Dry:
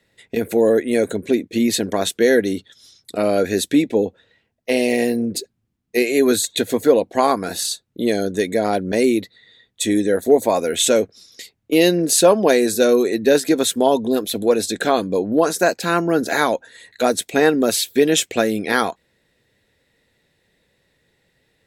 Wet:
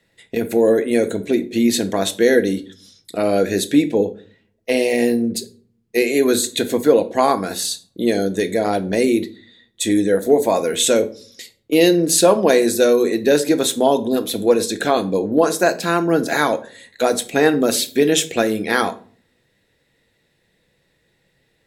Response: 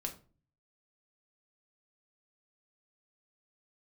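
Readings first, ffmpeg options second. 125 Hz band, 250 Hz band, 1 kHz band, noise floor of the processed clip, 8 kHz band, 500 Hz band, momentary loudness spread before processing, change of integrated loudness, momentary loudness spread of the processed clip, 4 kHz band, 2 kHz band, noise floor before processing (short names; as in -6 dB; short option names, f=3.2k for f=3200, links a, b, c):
+1.5 dB, +1.0 dB, +0.5 dB, -65 dBFS, +0.5 dB, +0.5 dB, 7 LU, +0.5 dB, 8 LU, +0.5 dB, +0.5 dB, -69 dBFS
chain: -filter_complex "[0:a]asplit=2[a][b];[1:a]atrim=start_sample=2205,asetrate=35721,aresample=44100[c];[b][c]afir=irnorm=-1:irlink=0,volume=-2dB[d];[a][d]amix=inputs=2:normalize=0,volume=-4.5dB"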